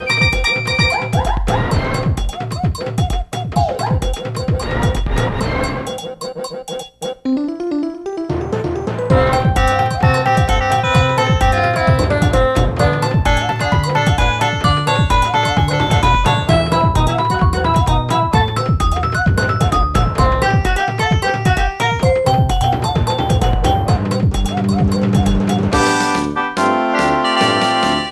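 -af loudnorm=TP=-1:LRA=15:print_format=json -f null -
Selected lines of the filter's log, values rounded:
"input_i" : "-15.6",
"input_tp" : "-2.5",
"input_lra" : "5.1",
"input_thresh" : "-25.7",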